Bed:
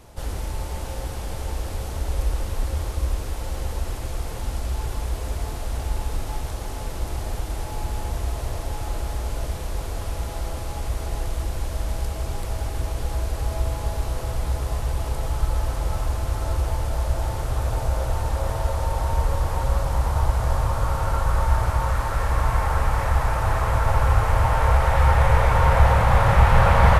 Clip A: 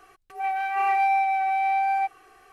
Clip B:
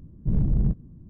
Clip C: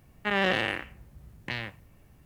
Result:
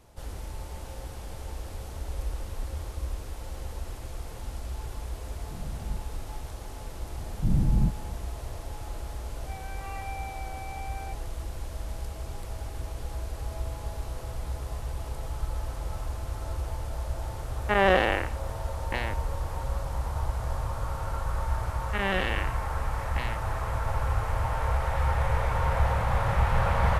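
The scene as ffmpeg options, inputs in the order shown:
ffmpeg -i bed.wav -i cue0.wav -i cue1.wav -i cue2.wav -filter_complex "[2:a]asplit=2[link_01][link_02];[3:a]asplit=2[link_03][link_04];[0:a]volume=-9dB[link_05];[link_02]bandreject=frequency=440:width=5.7[link_06];[1:a]highpass=860[link_07];[link_03]equalizer=frequency=650:width_type=o:width=2.8:gain=12.5[link_08];[link_04]lowpass=4100[link_09];[link_01]atrim=end=1.09,asetpts=PTS-STARTPTS,volume=-17.5dB,afade=type=in:duration=0.004:curve=hsin,afade=type=out:start_time=1.086:duration=0.004:curve=hsin,adelay=231525S[link_10];[link_06]atrim=end=1.09,asetpts=PTS-STARTPTS,volume=-1dB,afade=type=in:duration=0.004:curve=hsin,afade=type=out:start_time=1.086:duration=0.004:curve=hsin,adelay=7170[link_11];[link_07]atrim=end=2.52,asetpts=PTS-STARTPTS,volume=-14.5dB,afade=type=in:duration=0.004:curve=hsin,afade=type=out:start_time=2.516:duration=0.004:curve=hsin,adelay=9070[link_12];[link_08]atrim=end=2.25,asetpts=PTS-STARTPTS,volume=-4.5dB,afade=type=in:duration=0.004:curve=hsin,afade=type=out:start_time=2.246:duration=0.004:curve=hsin,adelay=17440[link_13];[link_09]atrim=end=2.25,asetpts=PTS-STARTPTS,volume=-2.5dB,afade=type=in:duration=0.004:curve=hsin,afade=type=out:start_time=2.246:duration=0.004:curve=hsin,adelay=21680[link_14];[link_05][link_10][link_11][link_12][link_13][link_14]amix=inputs=6:normalize=0" out.wav

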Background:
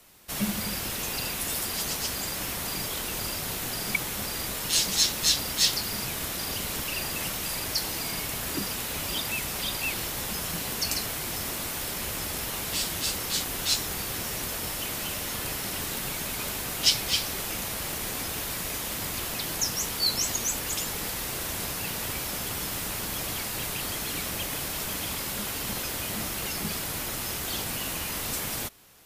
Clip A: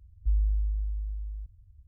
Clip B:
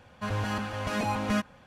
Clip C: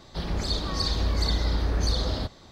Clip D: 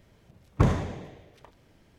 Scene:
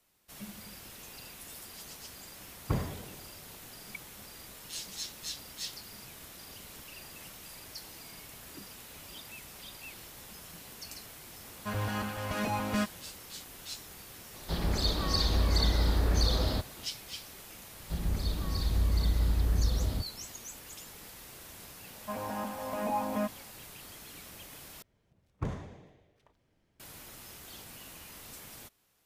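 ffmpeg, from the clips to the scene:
ffmpeg -i bed.wav -i cue0.wav -i cue1.wav -i cue2.wav -i cue3.wav -filter_complex "[4:a]asplit=2[link_01][link_02];[2:a]asplit=2[link_03][link_04];[3:a]asplit=2[link_05][link_06];[0:a]volume=-16.5dB[link_07];[link_06]bass=frequency=250:gain=9,treble=frequency=4000:gain=-3[link_08];[link_04]highpass=240,equalizer=frequency=250:width_type=q:width=4:gain=8,equalizer=frequency=370:width_type=q:width=4:gain=-10,equalizer=frequency=600:width_type=q:width=4:gain=6,equalizer=frequency=900:width_type=q:width=4:gain=6,equalizer=frequency=1400:width_type=q:width=4:gain=-9,equalizer=frequency=2000:width_type=q:width=4:gain=-6,lowpass=frequency=2200:width=0.5412,lowpass=frequency=2200:width=1.3066[link_09];[link_07]asplit=2[link_10][link_11];[link_10]atrim=end=24.824[link_12];[link_02]atrim=end=1.98,asetpts=PTS-STARTPTS,volume=-13.5dB[link_13];[link_11]atrim=start=26.796[link_14];[link_01]atrim=end=1.98,asetpts=PTS-STARTPTS,volume=-9.5dB,afade=type=in:duration=0.004:curve=hsin,afade=type=out:start_time=1.976:duration=0.004:curve=hsin,adelay=2100[link_15];[link_03]atrim=end=1.66,asetpts=PTS-STARTPTS,volume=-3dB,afade=type=in:duration=0.004:curve=hsin,afade=type=out:start_time=1.656:duration=0.004:curve=hsin,adelay=11440[link_16];[link_05]atrim=end=2.51,asetpts=PTS-STARTPTS,volume=-1.5dB,afade=type=in:duration=0.004:curve=hsin,afade=type=out:start_time=2.506:duration=0.004:curve=hsin,adelay=14340[link_17];[link_08]atrim=end=2.51,asetpts=PTS-STARTPTS,volume=-10.5dB,afade=type=in:duration=0.004:curve=hsin,afade=type=out:start_time=2.506:duration=0.004:curve=hsin,adelay=17750[link_18];[link_09]atrim=end=1.66,asetpts=PTS-STARTPTS,volume=-4dB,afade=type=in:duration=0.004:curve=hsin,afade=type=out:start_time=1.656:duration=0.004:curve=hsin,adelay=21860[link_19];[link_12][link_13]acrossfade=duration=0.004:curve1=hsin:curve2=hsin[link_20];[link_20][link_14]acrossfade=duration=0.004:curve1=hsin:curve2=hsin[link_21];[link_21][link_15][link_16][link_17][link_18][link_19]amix=inputs=6:normalize=0" out.wav

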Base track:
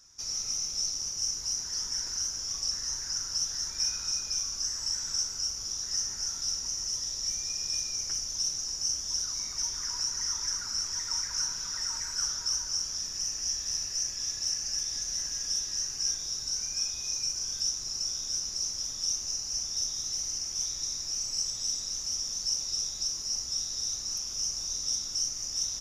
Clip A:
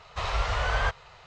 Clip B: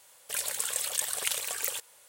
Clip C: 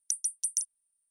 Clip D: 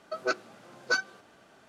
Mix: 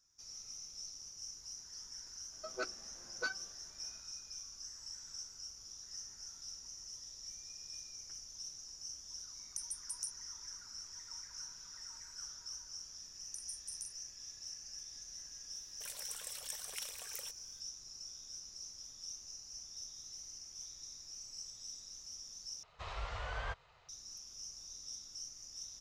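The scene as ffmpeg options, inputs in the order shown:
ffmpeg -i bed.wav -i cue0.wav -i cue1.wav -i cue2.wav -i cue3.wav -filter_complex "[3:a]asplit=2[link_01][link_02];[0:a]volume=-16.5dB[link_03];[link_02]asplit=2[link_04][link_05];[link_05]adelay=42,volume=-5dB[link_06];[link_04][link_06]amix=inputs=2:normalize=0[link_07];[link_03]asplit=2[link_08][link_09];[link_08]atrim=end=22.634[link_10];[1:a]atrim=end=1.26,asetpts=PTS-STARTPTS,volume=-14.5dB[link_11];[link_09]atrim=start=23.886[link_12];[4:a]atrim=end=1.68,asetpts=PTS-STARTPTS,volume=-11.5dB,afade=type=in:duration=0.004:curve=hsin,afade=type=out:start_time=1.676:duration=0.004:curve=hsin,adelay=2320[link_13];[link_01]atrim=end=1.1,asetpts=PTS-STARTPTS,volume=-12.5dB,afade=type=in:duration=0.004:curve=hsin,afade=type=out:start_time=1.096:duration=0.004:curve=hsin,adelay=417186S[link_14];[link_07]atrim=end=1.1,asetpts=PTS-STARTPTS,volume=-17dB,afade=type=in:duration=0.004:curve=hsin,afade=type=out:start_time=1.096:duration=0.004:curve=hsin,adelay=13240[link_15];[2:a]atrim=end=2.08,asetpts=PTS-STARTPTS,volume=-15dB,afade=type=in:duration=0.004:curve=hsin,afade=type=out:start_time=2.076:duration=0.004:curve=hsin,adelay=15510[link_16];[link_10][link_11]acrossfade=duration=0.004:curve1=hsin:curve2=hsin[link_17];[link_17][link_12]acrossfade=duration=0.004:curve1=hsin:curve2=hsin[link_18];[link_18][link_13][link_14][link_15][link_16]amix=inputs=5:normalize=0" out.wav

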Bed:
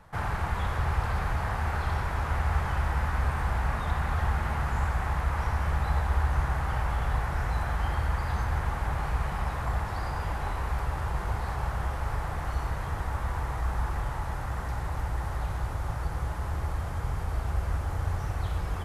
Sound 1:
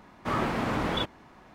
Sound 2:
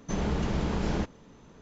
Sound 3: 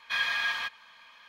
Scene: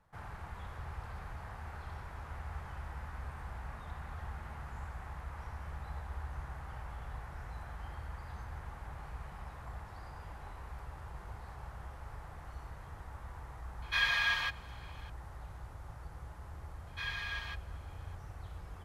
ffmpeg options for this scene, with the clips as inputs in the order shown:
ffmpeg -i bed.wav -i cue0.wav -i cue1.wav -i cue2.wav -filter_complex "[3:a]asplit=2[link_01][link_02];[0:a]volume=-16dB[link_03];[link_01]atrim=end=1.28,asetpts=PTS-STARTPTS,volume=-1.5dB,afade=type=in:duration=0.004:curve=hsin,afade=type=out:start_time=1.276:duration=0.004:curve=hsin,adelay=13820[link_04];[link_02]atrim=end=1.28,asetpts=PTS-STARTPTS,volume=-11dB,afade=type=in:duration=0.004:curve=hsin,afade=type=out:start_time=1.276:duration=0.004:curve=hsin,adelay=16870[link_05];[link_03][link_04][link_05]amix=inputs=3:normalize=0" out.wav

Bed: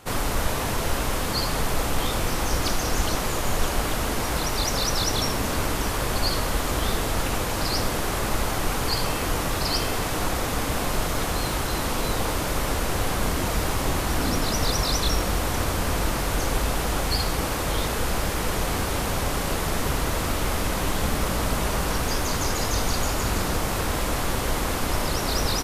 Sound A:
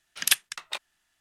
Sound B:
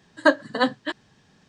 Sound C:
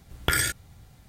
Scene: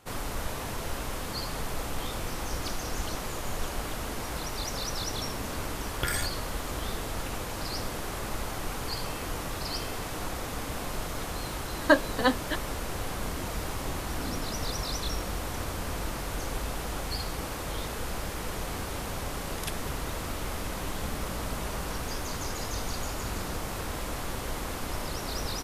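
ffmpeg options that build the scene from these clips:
ffmpeg -i bed.wav -i cue0.wav -i cue1.wav -i cue2.wav -filter_complex "[0:a]volume=-9dB[link_01];[3:a]atrim=end=1.08,asetpts=PTS-STARTPTS,volume=-7.5dB,afade=type=in:duration=0.004:curve=hsin,afade=type=out:start_time=1.076:duration=0.004:curve=hsin,adelay=5750[link_02];[2:a]atrim=end=1.48,asetpts=PTS-STARTPTS,volume=-3dB,afade=type=in:duration=0.004:curve=hsin,afade=type=out:start_time=1.476:duration=0.004:curve=hsin,adelay=11640[link_03];[1:a]atrim=end=1.2,asetpts=PTS-STARTPTS,volume=-17dB,afade=type=in:duration=0.004:curve=hsin,afade=type=out:start_time=1.196:duration=0.004:curve=hsin,adelay=19360[link_04];[link_01][link_02][link_03][link_04]amix=inputs=4:normalize=0" out.wav

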